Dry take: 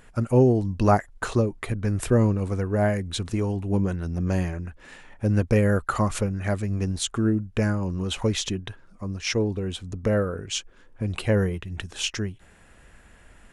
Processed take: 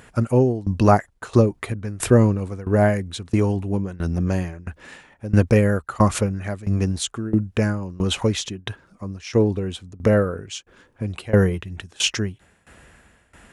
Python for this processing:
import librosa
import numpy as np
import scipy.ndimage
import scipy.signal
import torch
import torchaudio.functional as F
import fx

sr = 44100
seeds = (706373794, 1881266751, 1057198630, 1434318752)

y = scipy.signal.sosfilt(scipy.signal.butter(2, 61.0, 'highpass', fs=sr, output='sos'), x)
y = fx.tremolo_shape(y, sr, shape='saw_down', hz=1.5, depth_pct=90)
y = F.gain(torch.from_numpy(y), 7.5).numpy()